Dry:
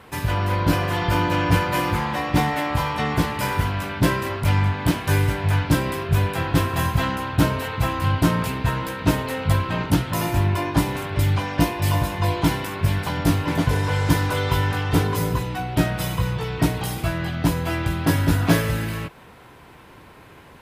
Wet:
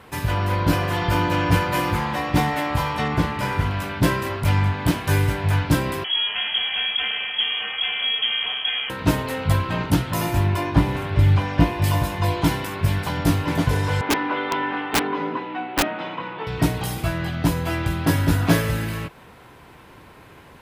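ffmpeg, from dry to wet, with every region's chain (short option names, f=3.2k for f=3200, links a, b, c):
-filter_complex "[0:a]asettb=1/sr,asplit=3[a][b][c];[a]atrim=end=3.084[d];[b]atrim=start=3.08:end=3.71,asetpts=PTS-STARTPTS,afade=t=in:d=0.004:c=qsin,afade=t=out:st=0.626:d=0.004:c=qsin,lowpass=f=3.7k:p=1,asplit=2[e][f];[f]adelay=40,volume=-12.5dB[g];[e][g]amix=inputs=2:normalize=0,atrim=end_sample=27783[h];[c]atrim=start=3.706[i];[d][h]acrossfade=d=0.004:c1=hsin:c2=qsin[j];[j][i]acrossfade=d=0.004:c1=qsin:c2=hsin,asettb=1/sr,asplit=3[k][l][m];[k]atrim=end=6.044[n];[l]atrim=start=6.04:end=8.9,asetpts=PTS-STARTPTS,afade=t=in:d=0.004:c=qsin,afade=t=out:st=2.856:d=0.004:c=qsin,acompressor=threshold=-20dB:ratio=2.5:attack=3.2:release=140:knee=1:detection=peak,lowpass=f=2.9k:t=q:w=0.5098,lowpass=f=2.9k:t=q:w=0.6013,lowpass=f=2.9k:t=q:w=0.9,lowpass=f=2.9k:t=q:w=2.563,afreqshift=-3400[o];[m]atrim=start=8.896[p];[n][o]acrossfade=d=0.004:c1=hsin:c2=qsin[q];[q][p]acrossfade=d=0.004:c1=qsin:c2=hsin,asettb=1/sr,asplit=3[r][s][t];[r]atrim=end=10.724[u];[s]atrim=start=10.72:end=11.84,asetpts=PTS-STARTPTS,afade=t=in:d=0.004:c=qsin,afade=t=out:st=1.116:d=0.004:c=qsin,acrossover=split=3900[v][w];[w]acompressor=threshold=-47dB:ratio=4:attack=1:release=60[x];[v][x]amix=inputs=2:normalize=0,lowshelf=f=130:g=7[y];[t]atrim=start=11.836[z];[u][y]acrossfade=d=0.004:c1=hsin:c2=qsin[aa];[aa][z]acrossfade=d=0.004:c1=qsin:c2=hsin,asettb=1/sr,asplit=3[ab][ac][ad];[ab]atrim=end=14.014[ae];[ac]atrim=start=14.01:end=16.47,asetpts=PTS-STARTPTS,afade=t=in:d=0.004:c=qsin,afade=t=out:st=2.456:d=0.004:c=qsin,highpass=f=240:w=0.5412,highpass=f=240:w=1.3066,equalizer=f=280:t=q:w=4:g=5,equalizer=f=470:t=q:w=4:g=-3,equalizer=f=890:t=q:w=4:g=4,lowpass=f=3k:w=0.5412,lowpass=f=3k:w=1.3066,asplit=2[af][ag];[ag]adelay=13,volume=-11.5dB[ah];[af][ah]amix=inputs=2:normalize=0,atrim=end_sample=108486,aeval=exprs='(mod(4.47*val(0)+1,2)-1)/4.47':c=same[ai];[ad]atrim=start=16.466[aj];[ae][ai]acrossfade=d=0.004:c1=hsin:c2=qsin[ak];[ak][aj]acrossfade=d=0.004:c1=qsin:c2=hsin"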